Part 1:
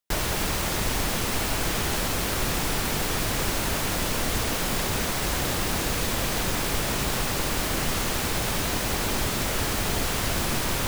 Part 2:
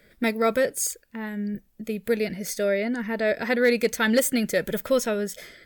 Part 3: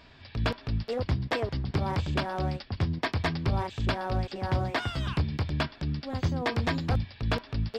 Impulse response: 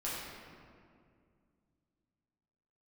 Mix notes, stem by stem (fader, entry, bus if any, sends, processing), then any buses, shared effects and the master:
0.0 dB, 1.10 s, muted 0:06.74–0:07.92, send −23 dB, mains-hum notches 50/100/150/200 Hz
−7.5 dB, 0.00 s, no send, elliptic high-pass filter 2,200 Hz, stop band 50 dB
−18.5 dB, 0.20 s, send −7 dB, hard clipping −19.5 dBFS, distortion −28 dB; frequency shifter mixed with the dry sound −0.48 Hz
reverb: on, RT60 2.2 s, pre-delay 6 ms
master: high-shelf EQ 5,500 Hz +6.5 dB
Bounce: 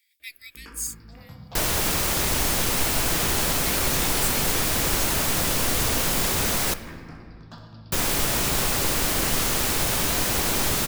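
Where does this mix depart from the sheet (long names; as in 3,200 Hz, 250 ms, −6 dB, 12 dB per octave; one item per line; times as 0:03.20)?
stem 1: entry 1.10 s → 1.45 s
reverb return +8.5 dB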